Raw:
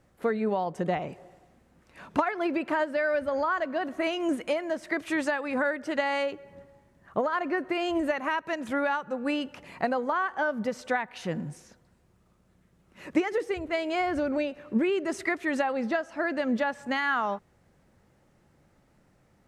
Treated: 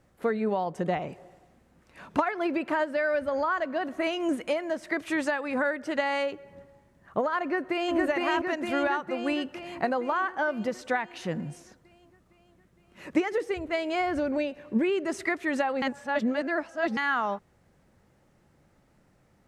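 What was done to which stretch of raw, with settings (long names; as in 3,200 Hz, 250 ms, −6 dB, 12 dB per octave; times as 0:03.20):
0:07.42–0:07.95: delay throw 460 ms, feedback 65%, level −1 dB
0:14.19–0:14.86: notch filter 1,300 Hz, Q 6.9
0:15.82–0:16.97: reverse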